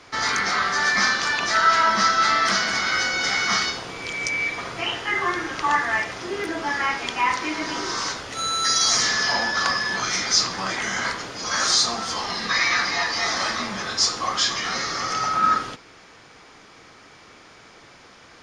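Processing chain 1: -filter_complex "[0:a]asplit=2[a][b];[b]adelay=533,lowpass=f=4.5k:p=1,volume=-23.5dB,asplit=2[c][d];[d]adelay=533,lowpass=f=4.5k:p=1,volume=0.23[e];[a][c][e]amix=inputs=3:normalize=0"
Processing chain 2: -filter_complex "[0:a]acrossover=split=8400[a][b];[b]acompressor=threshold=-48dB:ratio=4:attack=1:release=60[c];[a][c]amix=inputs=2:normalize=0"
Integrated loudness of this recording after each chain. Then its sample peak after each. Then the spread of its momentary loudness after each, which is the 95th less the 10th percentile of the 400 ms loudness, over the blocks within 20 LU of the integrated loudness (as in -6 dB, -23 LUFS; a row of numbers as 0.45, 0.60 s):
-21.5, -21.5 LUFS; -5.0, -6.0 dBFS; 9, 9 LU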